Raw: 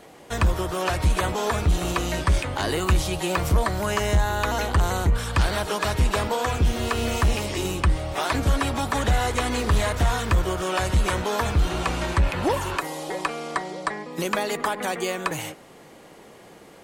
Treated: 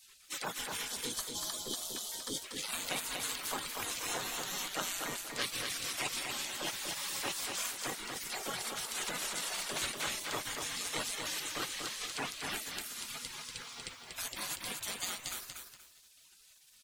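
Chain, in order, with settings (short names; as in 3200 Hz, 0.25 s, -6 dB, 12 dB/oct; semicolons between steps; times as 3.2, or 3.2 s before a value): bell 990 Hz +7.5 dB 2.4 oct, from 8.18 s 100 Hz, from 9.76 s 1100 Hz; early reflections 16 ms -15.5 dB, 56 ms -16 dB; reverb removal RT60 0.7 s; 0.87–2.43 spectral gain 530–3000 Hz -27 dB; limiter -13.5 dBFS, peak gain reduction 8 dB; spectral gate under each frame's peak -25 dB weak; lo-fi delay 0.239 s, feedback 35%, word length 10-bit, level -4 dB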